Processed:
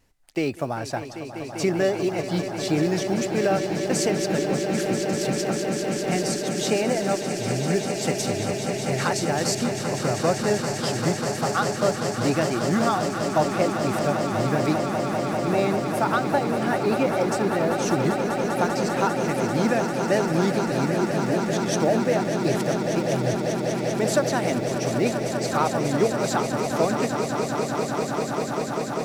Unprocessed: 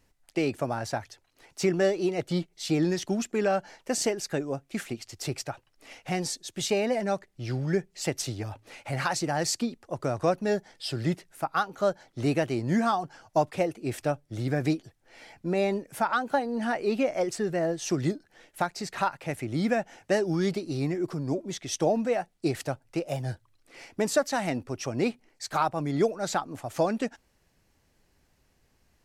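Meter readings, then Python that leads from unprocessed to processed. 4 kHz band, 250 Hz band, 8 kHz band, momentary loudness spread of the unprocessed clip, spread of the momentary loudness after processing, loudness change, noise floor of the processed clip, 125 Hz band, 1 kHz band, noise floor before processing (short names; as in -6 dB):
+6.0 dB, +6.0 dB, +6.0 dB, 9 LU, 4 LU, +5.5 dB, -31 dBFS, +6.0 dB, +6.0 dB, -69 dBFS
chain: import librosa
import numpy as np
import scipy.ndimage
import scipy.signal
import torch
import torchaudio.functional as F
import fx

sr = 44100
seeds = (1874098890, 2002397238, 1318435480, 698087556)

y = fx.block_float(x, sr, bits=7)
y = fx.vibrato(y, sr, rate_hz=2.1, depth_cents=16.0)
y = fx.echo_swell(y, sr, ms=197, loudest=8, wet_db=-10.0)
y = F.gain(torch.from_numpy(y), 2.0).numpy()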